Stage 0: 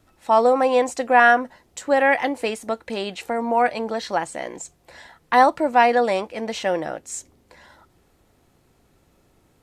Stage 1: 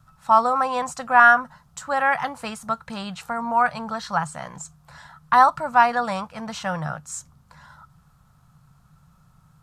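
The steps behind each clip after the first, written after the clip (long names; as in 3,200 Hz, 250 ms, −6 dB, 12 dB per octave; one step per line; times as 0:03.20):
drawn EQ curve 100 Hz 0 dB, 150 Hz +11 dB, 340 Hz −24 dB, 1,300 Hz +6 dB, 2,000 Hz −11 dB, 5,000 Hz −5 dB
level +3.5 dB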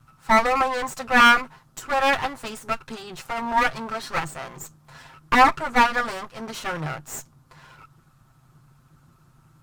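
lower of the sound and its delayed copy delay 7.6 ms
level +1 dB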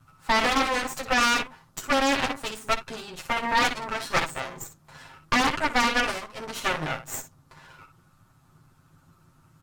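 ambience of single reflections 11 ms −5 dB, 61 ms −8.5 dB
brickwall limiter −13 dBFS, peak gain reduction 11 dB
harmonic generator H 4 −6 dB, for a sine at −13 dBFS
level −2.5 dB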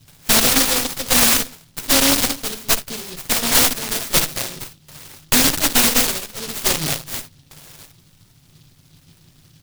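short delay modulated by noise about 4,000 Hz, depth 0.36 ms
level +7.5 dB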